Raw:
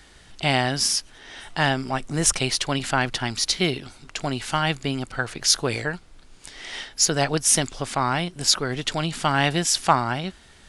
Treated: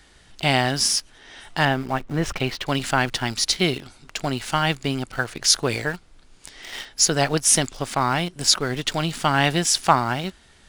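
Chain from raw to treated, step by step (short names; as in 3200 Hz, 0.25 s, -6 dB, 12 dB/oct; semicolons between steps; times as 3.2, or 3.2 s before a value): 1.65–2.66 LPF 2700 Hz 12 dB/oct; in parallel at -4.5 dB: sample gate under -30 dBFS; on the sum: gain -2.5 dB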